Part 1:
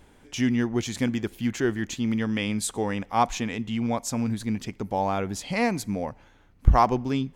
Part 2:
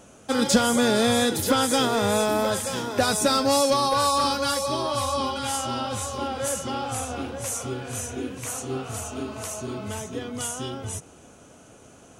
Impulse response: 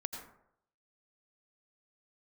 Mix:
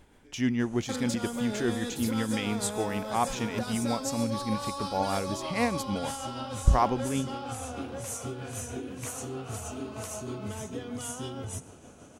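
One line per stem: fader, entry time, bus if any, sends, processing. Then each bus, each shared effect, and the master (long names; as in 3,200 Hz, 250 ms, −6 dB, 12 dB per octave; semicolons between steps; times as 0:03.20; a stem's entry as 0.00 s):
−2.5 dB, 0.00 s, no send, no processing
−5.0 dB, 0.60 s, send −6 dB, low-shelf EQ 490 Hz +3.5 dB; downward compressor 6 to 1, threshold −29 dBFS, peak gain reduction 16.5 dB; soft clipping −19.5 dBFS, distortion −28 dB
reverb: on, RT60 0.70 s, pre-delay 78 ms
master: amplitude tremolo 6.4 Hz, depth 34%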